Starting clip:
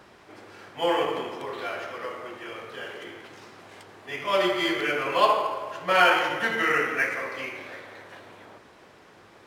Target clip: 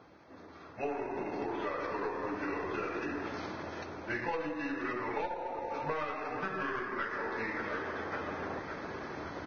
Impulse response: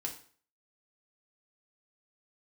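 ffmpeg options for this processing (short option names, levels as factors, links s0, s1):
-filter_complex "[0:a]highshelf=f=2300:g=-7,bandreject=f=3400:w=13,aecho=1:1:561|1122|1683|2244:0.106|0.0583|0.032|0.0176,dynaudnorm=f=270:g=11:m=6.68,aeval=exprs='(tanh(1.78*val(0)+0.8)-tanh(0.8))/1.78':c=same,asetrate=37084,aresample=44100,atempo=1.18921,asplit=2[s0][s1];[1:a]atrim=start_sample=2205,highshelf=f=2900:g=-8.5[s2];[s1][s2]afir=irnorm=-1:irlink=0,volume=0.112[s3];[s0][s3]amix=inputs=2:normalize=0,acompressor=threshold=0.0251:ratio=16" -ar 16000 -c:a libvorbis -b:a 16k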